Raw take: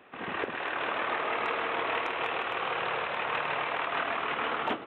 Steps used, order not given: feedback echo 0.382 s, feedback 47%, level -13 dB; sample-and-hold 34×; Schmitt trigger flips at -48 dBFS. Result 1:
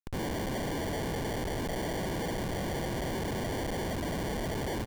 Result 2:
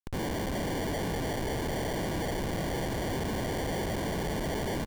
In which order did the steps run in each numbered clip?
feedback echo > sample-and-hold > Schmitt trigger; sample-and-hold > Schmitt trigger > feedback echo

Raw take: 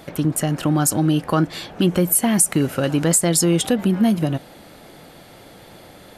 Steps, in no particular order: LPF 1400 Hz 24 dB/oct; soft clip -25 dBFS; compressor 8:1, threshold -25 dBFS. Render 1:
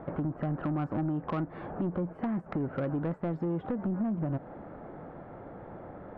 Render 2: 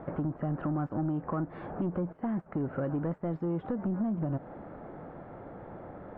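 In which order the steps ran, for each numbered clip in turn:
LPF > compressor > soft clip; compressor > soft clip > LPF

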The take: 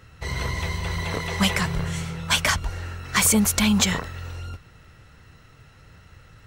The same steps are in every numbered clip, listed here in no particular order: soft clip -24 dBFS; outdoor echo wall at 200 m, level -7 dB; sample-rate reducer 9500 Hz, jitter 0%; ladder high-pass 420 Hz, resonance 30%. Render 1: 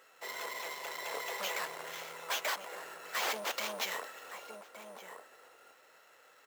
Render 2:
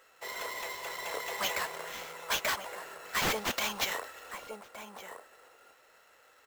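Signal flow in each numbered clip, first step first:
soft clip > outdoor echo > sample-rate reducer > ladder high-pass; ladder high-pass > soft clip > outdoor echo > sample-rate reducer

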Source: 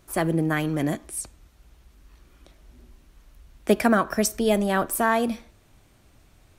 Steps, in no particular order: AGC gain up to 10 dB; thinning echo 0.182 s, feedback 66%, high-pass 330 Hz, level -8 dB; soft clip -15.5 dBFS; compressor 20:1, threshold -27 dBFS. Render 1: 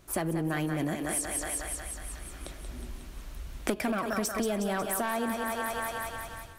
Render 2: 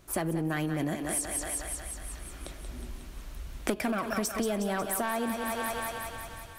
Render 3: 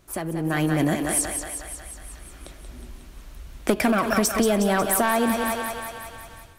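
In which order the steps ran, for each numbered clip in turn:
thinning echo > soft clip > AGC > compressor; soft clip > AGC > thinning echo > compressor; soft clip > thinning echo > compressor > AGC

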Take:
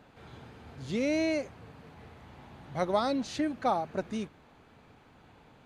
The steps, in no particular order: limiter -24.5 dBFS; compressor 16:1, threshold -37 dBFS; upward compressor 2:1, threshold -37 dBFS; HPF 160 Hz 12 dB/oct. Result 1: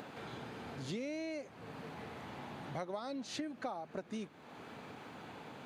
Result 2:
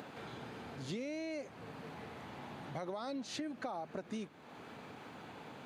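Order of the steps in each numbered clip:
HPF > upward compressor > compressor > limiter; limiter > upward compressor > HPF > compressor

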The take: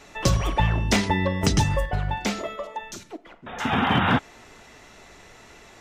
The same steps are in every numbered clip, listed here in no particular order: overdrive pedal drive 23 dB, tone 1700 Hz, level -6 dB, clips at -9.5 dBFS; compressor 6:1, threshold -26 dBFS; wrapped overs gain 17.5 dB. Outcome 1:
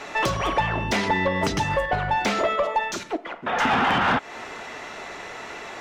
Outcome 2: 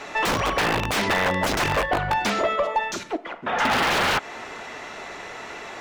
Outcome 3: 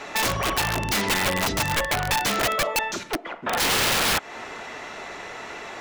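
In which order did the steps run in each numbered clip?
compressor > wrapped overs > overdrive pedal; wrapped overs > compressor > overdrive pedal; compressor > overdrive pedal > wrapped overs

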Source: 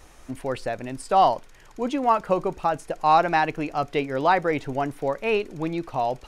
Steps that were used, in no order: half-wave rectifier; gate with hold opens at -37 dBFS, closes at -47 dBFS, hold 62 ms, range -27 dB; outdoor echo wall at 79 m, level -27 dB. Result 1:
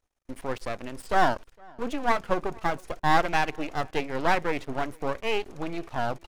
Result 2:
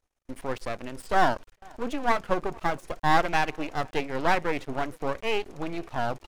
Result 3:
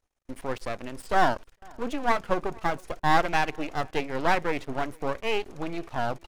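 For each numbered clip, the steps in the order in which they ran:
half-wave rectifier > gate with hold > outdoor echo; outdoor echo > half-wave rectifier > gate with hold; half-wave rectifier > outdoor echo > gate with hold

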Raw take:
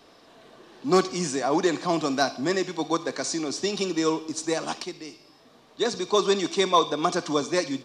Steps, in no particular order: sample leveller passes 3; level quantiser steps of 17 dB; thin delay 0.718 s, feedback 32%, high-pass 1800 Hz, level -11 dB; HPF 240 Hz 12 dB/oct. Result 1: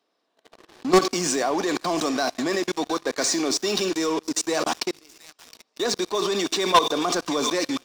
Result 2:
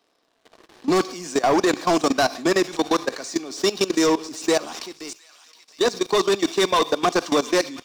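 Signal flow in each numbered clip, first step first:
thin delay > level quantiser > HPF > sample leveller; HPF > sample leveller > thin delay > level quantiser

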